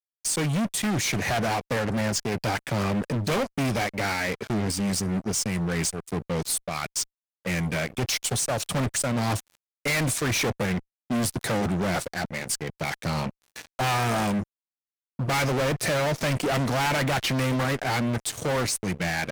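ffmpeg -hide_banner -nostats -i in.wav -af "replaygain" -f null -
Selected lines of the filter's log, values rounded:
track_gain = +8.6 dB
track_peak = 0.074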